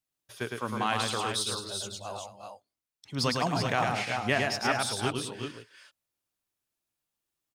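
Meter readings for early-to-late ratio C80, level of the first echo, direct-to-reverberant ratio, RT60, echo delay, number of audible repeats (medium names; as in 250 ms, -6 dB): no reverb, -3.5 dB, no reverb, no reverb, 108 ms, 3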